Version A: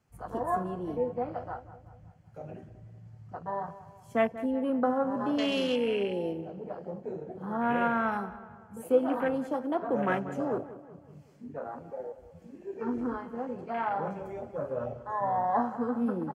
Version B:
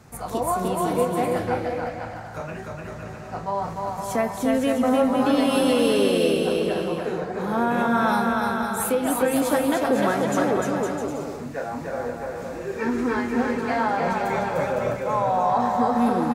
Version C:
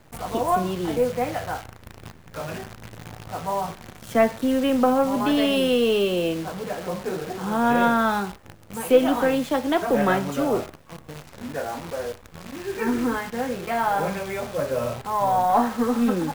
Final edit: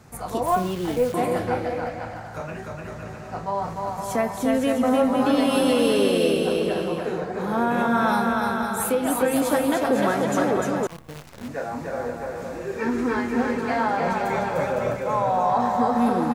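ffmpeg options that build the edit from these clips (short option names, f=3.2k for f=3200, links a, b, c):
-filter_complex "[2:a]asplit=2[a][b];[1:a]asplit=3[c][d][e];[c]atrim=end=0.462[f];[a]atrim=start=0.458:end=1.142[g];[d]atrim=start=1.138:end=10.872[h];[b]atrim=start=10.868:end=11.482[i];[e]atrim=start=11.478[j];[f][g]acrossfade=d=0.004:c1=hsin:c2=hsin[k];[k][h]acrossfade=d=0.004:c1=hsin:c2=hsin[l];[l][i]acrossfade=d=0.004:c1=hsin:c2=hsin[m];[m][j]acrossfade=d=0.004:c1=hsin:c2=hsin"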